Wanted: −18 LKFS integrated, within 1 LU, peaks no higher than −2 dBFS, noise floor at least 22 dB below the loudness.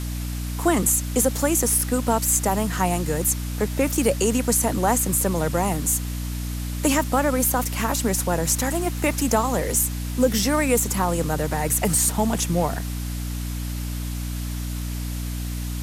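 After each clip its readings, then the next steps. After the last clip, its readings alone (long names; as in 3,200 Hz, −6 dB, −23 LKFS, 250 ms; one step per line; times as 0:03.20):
mains hum 60 Hz; hum harmonics up to 300 Hz; level of the hum −26 dBFS; background noise floor −29 dBFS; target noise floor −45 dBFS; integrated loudness −22.5 LKFS; sample peak −5.5 dBFS; target loudness −18.0 LKFS
→ hum removal 60 Hz, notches 5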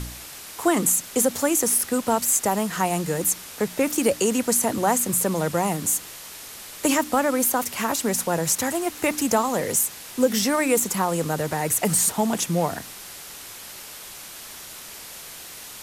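mains hum none found; background noise floor −40 dBFS; target noise floor −44 dBFS
→ broadband denoise 6 dB, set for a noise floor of −40 dBFS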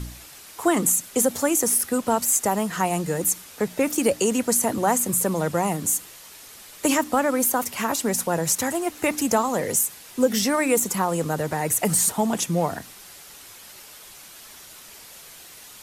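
background noise floor −45 dBFS; integrated loudness −22.5 LKFS; sample peak −7.0 dBFS; target loudness −18.0 LKFS
→ level +4.5 dB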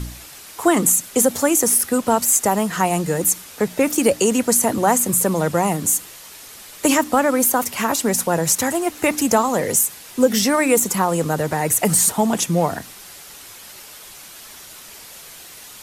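integrated loudness −18.0 LKFS; sample peak −2.5 dBFS; background noise floor −40 dBFS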